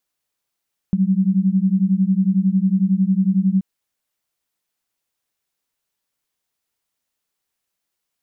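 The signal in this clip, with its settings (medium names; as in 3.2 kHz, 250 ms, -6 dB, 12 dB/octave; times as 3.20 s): chord F#3/G3 sine, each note -17 dBFS 2.68 s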